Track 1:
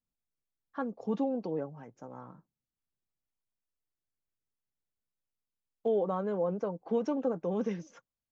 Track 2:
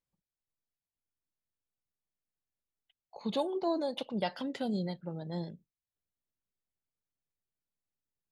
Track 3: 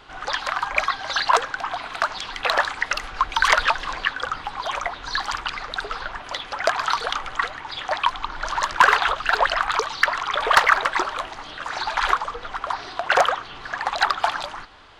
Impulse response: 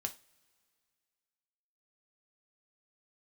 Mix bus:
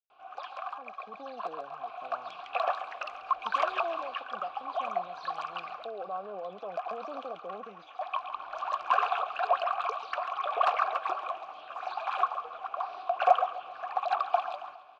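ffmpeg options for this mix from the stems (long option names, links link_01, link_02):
-filter_complex "[0:a]volume=-5.5dB,asplit=2[link_01][link_02];[1:a]adelay=200,volume=-13dB[link_03];[2:a]asoftclip=type=tanh:threshold=-6.5dB,adelay=100,volume=-3.5dB,asplit=2[link_04][link_05];[link_05]volume=-14.5dB[link_06];[link_02]apad=whole_len=665893[link_07];[link_04][link_07]sidechaincompress=threshold=-48dB:ratio=3:attack=7.9:release=551[link_08];[link_01][link_03]amix=inputs=2:normalize=0,dynaudnorm=framelen=220:gausssize=9:maxgain=11.5dB,alimiter=level_in=0.5dB:limit=-24dB:level=0:latency=1:release=98,volume=-0.5dB,volume=0dB[link_09];[link_06]aecho=0:1:137|274|411|548|685|822|959:1|0.51|0.26|0.133|0.0677|0.0345|0.0176[link_10];[link_08][link_09][link_10]amix=inputs=3:normalize=0,dynaudnorm=framelen=340:gausssize=9:maxgain=5dB,asplit=3[link_11][link_12][link_13];[link_11]bandpass=frequency=730:width_type=q:width=8,volume=0dB[link_14];[link_12]bandpass=frequency=1090:width_type=q:width=8,volume=-6dB[link_15];[link_13]bandpass=frequency=2440:width_type=q:width=8,volume=-9dB[link_16];[link_14][link_15][link_16]amix=inputs=3:normalize=0"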